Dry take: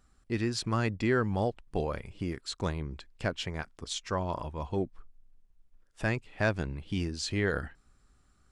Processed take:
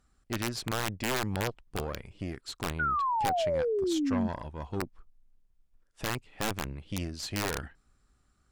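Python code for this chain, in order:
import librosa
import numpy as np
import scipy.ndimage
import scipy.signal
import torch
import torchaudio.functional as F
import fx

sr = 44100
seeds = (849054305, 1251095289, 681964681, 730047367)

y = fx.cheby_harmonics(x, sr, harmonics=(2, 4, 5, 8), levels_db=(-26, -10, -20, -35), full_scale_db=-13.5)
y = (np.mod(10.0 ** (15.5 / 20.0) * y + 1.0, 2.0) - 1.0) / 10.0 ** (15.5 / 20.0)
y = fx.spec_paint(y, sr, seeds[0], shape='fall', start_s=2.79, length_s=1.49, low_hz=210.0, high_hz=1500.0, level_db=-22.0)
y = y * librosa.db_to_amplitude(-6.5)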